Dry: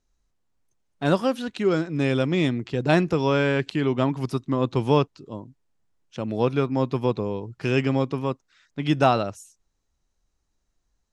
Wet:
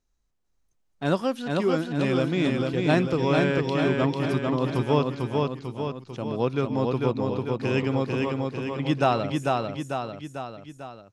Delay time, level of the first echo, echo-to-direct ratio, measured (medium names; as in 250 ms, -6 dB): 446 ms, -3.0 dB, -1.5 dB